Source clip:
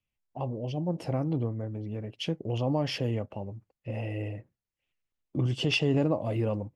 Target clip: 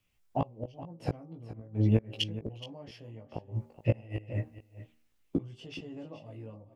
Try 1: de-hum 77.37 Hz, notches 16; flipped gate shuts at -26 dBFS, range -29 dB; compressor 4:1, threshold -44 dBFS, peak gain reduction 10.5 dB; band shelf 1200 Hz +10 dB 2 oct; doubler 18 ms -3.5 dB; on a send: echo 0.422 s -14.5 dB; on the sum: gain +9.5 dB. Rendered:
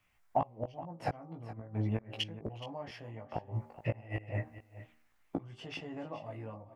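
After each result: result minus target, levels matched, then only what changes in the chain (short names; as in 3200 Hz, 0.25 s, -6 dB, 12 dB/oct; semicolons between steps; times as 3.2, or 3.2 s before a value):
compressor: peak gain reduction +10.5 dB; 1000 Hz band +9.5 dB
remove: compressor 4:1, threshold -44 dBFS, peak gain reduction 10.5 dB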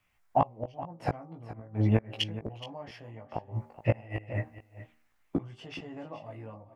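1000 Hz band +8.5 dB
remove: band shelf 1200 Hz +10 dB 2 oct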